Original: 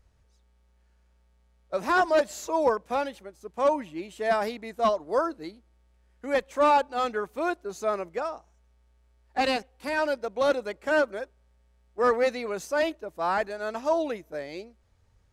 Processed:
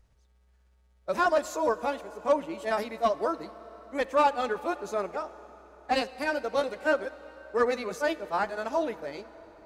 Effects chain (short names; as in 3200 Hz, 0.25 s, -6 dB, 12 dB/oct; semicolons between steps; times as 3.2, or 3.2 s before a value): granular stretch 0.63×, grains 0.122 s; plate-style reverb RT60 4.6 s, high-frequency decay 0.8×, DRR 15 dB